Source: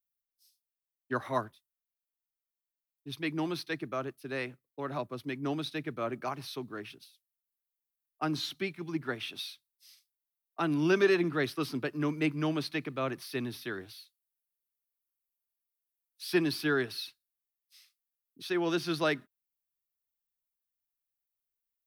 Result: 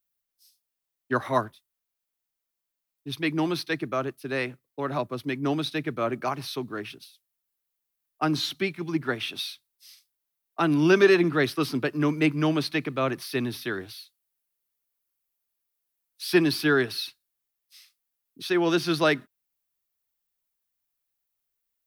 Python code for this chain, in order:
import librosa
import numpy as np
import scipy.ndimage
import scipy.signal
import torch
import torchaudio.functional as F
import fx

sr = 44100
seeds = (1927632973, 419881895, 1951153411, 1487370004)

y = F.gain(torch.from_numpy(x), 7.0).numpy()